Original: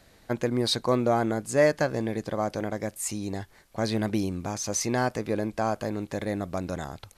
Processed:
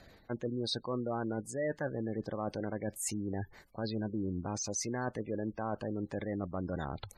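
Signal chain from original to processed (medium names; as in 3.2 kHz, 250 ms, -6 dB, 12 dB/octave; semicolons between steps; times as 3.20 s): spectral gate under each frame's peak -20 dB strong; dynamic bell 680 Hz, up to -6 dB, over -43 dBFS, Q 4.8; reverse; compression 5:1, threshold -34 dBFS, peak gain reduction 14.5 dB; reverse; trim +1 dB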